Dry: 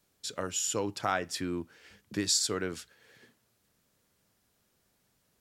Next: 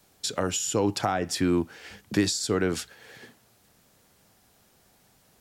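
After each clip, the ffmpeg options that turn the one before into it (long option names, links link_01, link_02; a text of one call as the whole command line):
ffmpeg -i in.wav -filter_complex "[0:a]asplit=2[link_01][link_02];[link_02]alimiter=limit=-24dB:level=0:latency=1,volume=-1.5dB[link_03];[link_01][link_03]amix=inputs=2:normalize=0,acrossover=split=430[link_04][link_05];[link_05]acompressor=threshold=-32dB:ratio=10[link_06];[link_04][link_06]amix=inputs=2:normalize=0,equalizer=frequency=770:width_type=o:width=0.36:gain=6,volume=5.5dB" out.wav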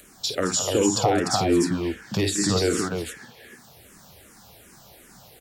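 ffmpeg -i in.wav -filter_complex "[0:a]acompressor=mode=upward:threshold=-45dB:ratio=2.5,asplit=2[link_01][link_02];[link_02]aecho=0:1:52|185|214|297:0.422|0.126|0.316|0.668[link_03];[link_01][link_03]amix=inputs=2:normalize=0,asplit=2[link_04][link_05];[link_05]afreqshift=-2.6[link_06];[link_04][link_06]amix=inputs=2:normalize=1,volume=5dB" out.wav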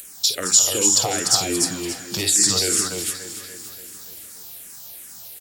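ffmpeg -i in.wav -filter_complex "[0:a]crystalizer=i=7.5:c=0,acrusher=bits=7:mix=0:aa=0.000001,asplit=2[link_01][link_02];[link_02]aecho=0:1:288|576|864|1152|1440|1728:0.224|0.132|0.0779|0.046|0.0271|0.016[link_03];[link_01][link_03]amix=inputs=2:normalize=0,volume=-6.5dB" out.wav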